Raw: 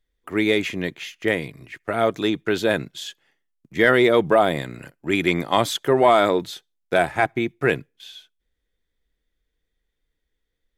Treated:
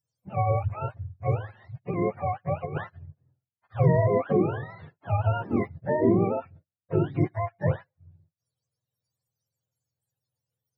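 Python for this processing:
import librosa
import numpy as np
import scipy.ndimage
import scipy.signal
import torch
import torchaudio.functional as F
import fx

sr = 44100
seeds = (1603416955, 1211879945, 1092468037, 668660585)

y = fx.octave_mirror(x, sr, pivot_hz=490.0)
y = fx.over_compress(y, sr, threshold_db=-24.0, ratio=-0.5, at=(2.65, 3.06))
y = F.gain(torch.from_numpy(y), -5.5).numpy()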